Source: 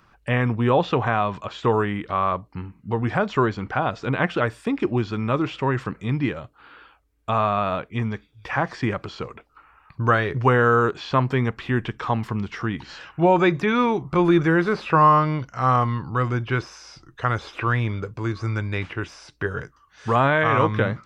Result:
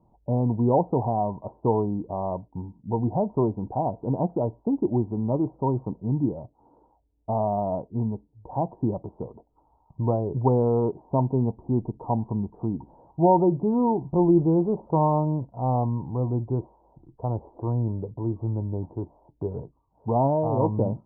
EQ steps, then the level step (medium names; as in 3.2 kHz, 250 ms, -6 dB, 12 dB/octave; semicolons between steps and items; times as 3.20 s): rippled Chebyshev low-pass 960 Hz, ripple 3 dB; 0.0 dB